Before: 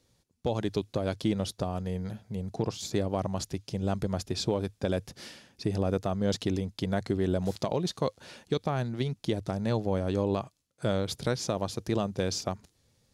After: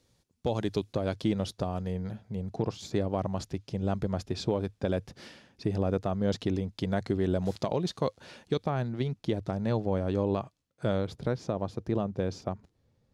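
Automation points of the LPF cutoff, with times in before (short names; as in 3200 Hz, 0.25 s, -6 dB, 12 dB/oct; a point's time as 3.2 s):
LPF 6 dB/oct
11000 Hz
from 0.93 s 4700 Hz
from 1.92 s 2800 Hz
from 6.73 s 4800 Hz
from 8.65 s 2600 Hz
from 11.07 s 1000 Hz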